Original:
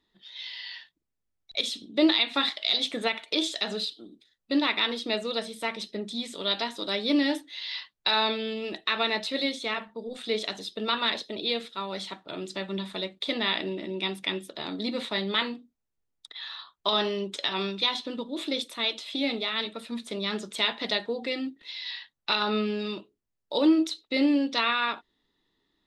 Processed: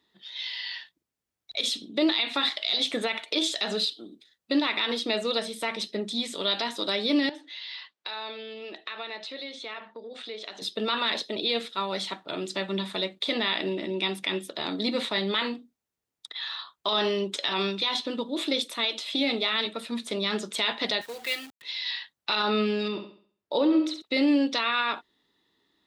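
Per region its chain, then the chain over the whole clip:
7.29–10.62 s: compression 3:1, threshold -41 dBFS + band-pass 290–5100 Hz
21.01–21.62 s: band-pass filter 2.5 kHz, Q 0.74 + companded quantiser 4-bit
22.88–24.02 s: low-pass 2.1 kHz 6 dB/octave + flutter echo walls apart 11.6 m, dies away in 0.48 s
whole clip: high-pass 68 Hz; bass shelf 220 Hz -5 dB; peak limiter -20 dBFS; trim +4.5 dB

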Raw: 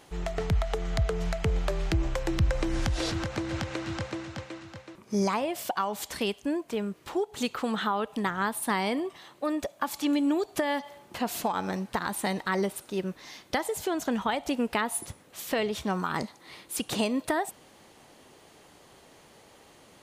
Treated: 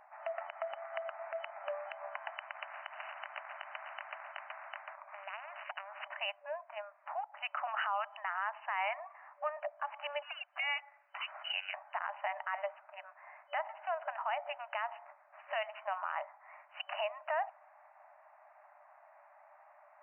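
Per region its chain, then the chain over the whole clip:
2.37–6.08 s: transient shaper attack +1 dB, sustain -3 dB + spectrum-flattening compressor 10:1
7.67–9.57 s: high-pass 640 Hz 24 dB/octave + tilt EQ +1.5 dB/octave
10.22–11.74 s: bass shelf 400 Hz -6 dB + frequency inversion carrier 4 kHz
whole clip: local Wiener filter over 15 samples; FFT band-pass 580–3000 Hz; peak limiter -26 dBFS; trim +1 dB

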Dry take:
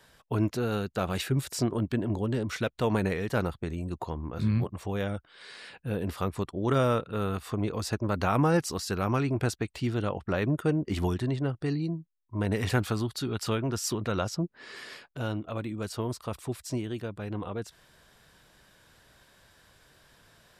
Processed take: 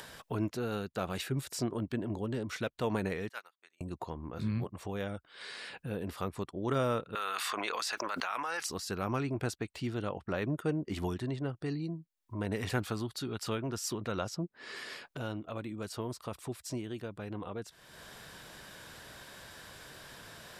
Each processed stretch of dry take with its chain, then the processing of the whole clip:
3.29–3.81 s: high-pass 1.4 kHz + upward expansion 2.5:1, over -55 dBFS
7.15–8.67 s: high-pass 1.3 kHz + treble shelf 7.1 kHz -8.5 dB + level flattener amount 100%
whole clip: bass shelf 73 Hz -10 dB; upward compressor, threshold -31 dBFS; trim -5 dB

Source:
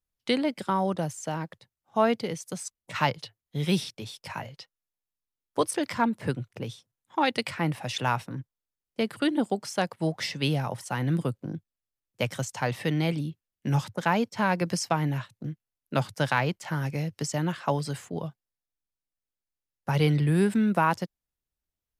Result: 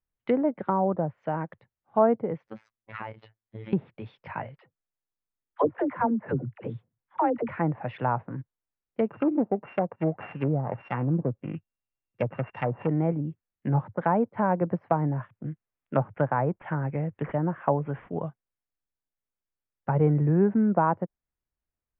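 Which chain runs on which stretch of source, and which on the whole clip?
2.47–3.73 s: compression 12:1, threshold -30 dBFS + robot voice 110 Hz
4.59–7.49 s: distance through air 220 m + phase dispersion lows, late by 69 ms, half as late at 460 Hz
9.05–12.89 s: sorted samples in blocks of 16 samples + low-pass that closes with the level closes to 970 Hz, closed at -24 dBFS + treble shelf 6 kHz +9.5 dB
15.04–18.18 s: low-pass that closes with the level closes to 2.8 kHz, closed at -24.5 dBFS + careless resampling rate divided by 6×, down none, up filtered
whole clip: low-pass that closes with the level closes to 990 Hz, closed at -24.5 dBFS; low-pass 2.2 kHz 24 dB/octave; dynamic bell 640 Hz, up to +4 dB, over -38 dBFS, Q 0.73

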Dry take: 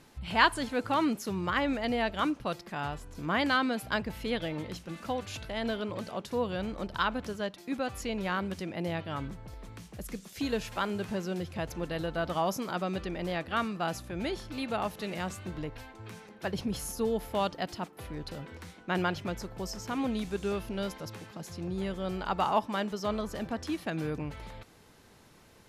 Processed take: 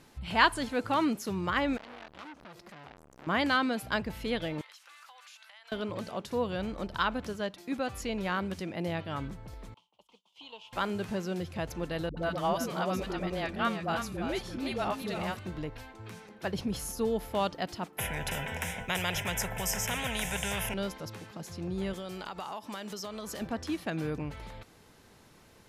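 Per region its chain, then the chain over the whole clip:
1.77–3.27 s: compression 12:1, threshold -36 dBFS + transformer saturation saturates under 2.3 kHz
4.61–5.72 s: high-pass 1 kHz 24 dB/octave + compression 10:1, threshold -49 dBFS
9.74–10.73 s: two resonant band-passes 1.7 kHz, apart 1.7 oct + expander -60 dBFS
12.09–15.39 s: phase dispersion highs, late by 82 ms, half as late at 400 Hz + delay 337 ms -7.5 dB
17.98–20.74 s: resonant low shelf 230 Hz +14 dB, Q 1.5 + static phaser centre 1.2 kHz, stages 6 + spectrum-flattening compressor 4:1
21.93–23.41 s: high-pass 150 Hz 6 dB/octave + treble shelf 3.2 kHz +10.5 dB + compression 12:1, threshold -35 dBFS
whole clip: none

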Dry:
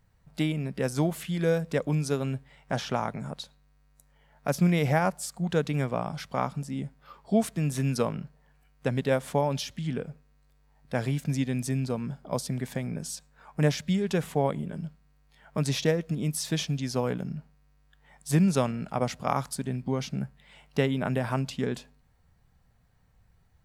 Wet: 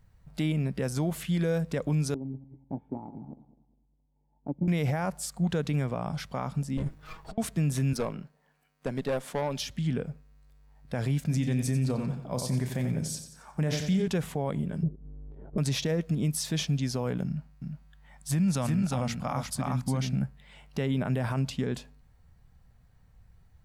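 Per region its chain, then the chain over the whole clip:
2.14–4.68 s: backward echo that repeats 101 ms, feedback 53%, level -11 dB + cascade formant filter u + transient shaper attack +4 dB, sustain -2 dB
6.77–7.38 s: comb filter that takes the minimum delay 6.3 ms + compressor with a negative ratio -36 dBFS, ratio -0.5
7.93–9.60 s: high-pass 220 Hz + valve stage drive 24 dB, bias 0.45
11.22–14.08 s: doubling 32 ms -11 dB + feedback delay 90 ms, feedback 45%, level -10 dB
14.83–15.58 s: waveshaping leveller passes 2 + upward compressor, threshold -33 dBFS + resonant low-pass 380 Hz, resonance Q 3.6
17.26–20.22 s: peaking EQ 410 Hz -10 dB 0.48 oct + delay 355 ms -5 dB
whole clip: bass shelf 140 Hz +7.5 dB; peak limiter -19.5 dBFS

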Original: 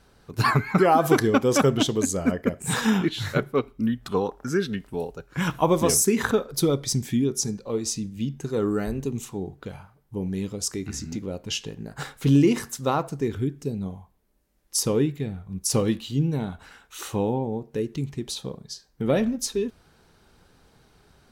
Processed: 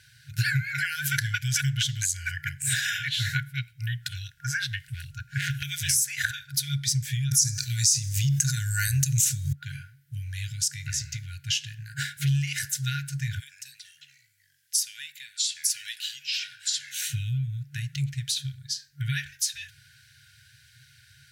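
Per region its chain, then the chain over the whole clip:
4.87–5.63 s: bass shelf 380 Hz +7.5 dB + hard clipper -19.5 dBFS + loudspeaker Doppler distortion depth 0.15 ms
7.31–9.53 s: resonant high shelf 4.4 kHz +9 dB, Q 1.5 + level flattener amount 70%
13.39–17.11 s: Bessel high-pass 2.5 kHz + ever faster or slower copies 84 ms, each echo -6 st, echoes 2, each echo -6 dB
whole clip: FFT band-reject 140–1400 Hz; high-pass 100 Hz 24 dB/octave; compression 2.5:1, threshold -33 dBFS; trim +7.5 dB

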